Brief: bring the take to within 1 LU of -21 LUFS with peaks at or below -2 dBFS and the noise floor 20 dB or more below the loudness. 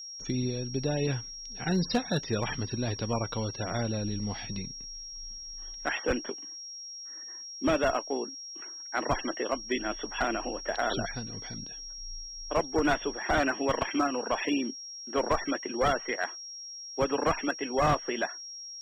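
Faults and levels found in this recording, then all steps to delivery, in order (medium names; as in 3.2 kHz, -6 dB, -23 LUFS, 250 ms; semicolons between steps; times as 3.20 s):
clipped samples 0.3%; clipping level -19.5 dBFS; steady tone 5.6 kHz; tone level -40 dBFS; loudness -31.5 LUFS; peak level -19.5 dBFS; loudness target -21.0 LUFS
-> clip repair -19.5 dBFS; band-stop 5.6 kHz, Q 30; trim +10.5 dB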